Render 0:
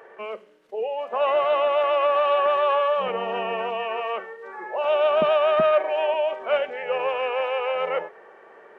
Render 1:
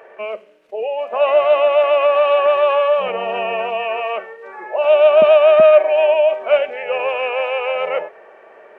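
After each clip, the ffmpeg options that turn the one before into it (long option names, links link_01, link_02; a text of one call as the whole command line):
ffmpeg -i in.wav -af "equalizer=frequency=100:width_type=o:width=0.33:gain=5,equalizer=frequency=160:width_type=o:width=0.33:gain=-4,equalizer=frequency=630:width_type=o:width=0.33:gain=9,equalizer=frequency=2500:width_type=o:width=0.33:gain=8,volume=2dB" out.wav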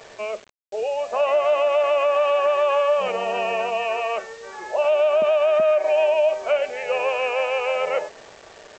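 ffmpeg -i in.wav -af "aresample=16000,acrusher=bits=6:mix=0:aa=0.000001,aresample=44100,alimiter=limit=-9.5dB:level=0:latency=1:release=113,volume=-2.5dB" out.wav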